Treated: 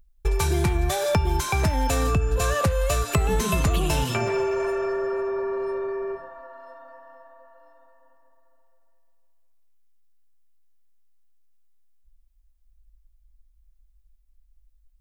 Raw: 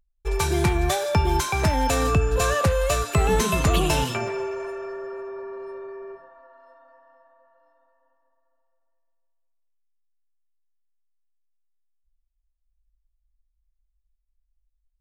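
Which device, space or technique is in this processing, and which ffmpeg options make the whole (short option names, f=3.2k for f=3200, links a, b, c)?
ASMR close-microphone chain: -af "lowshelf=f=150:g=6,acompressor=threshold=-29dB:ratio=4,highshelf=f=11k:g=5.5,volume=7.5dB"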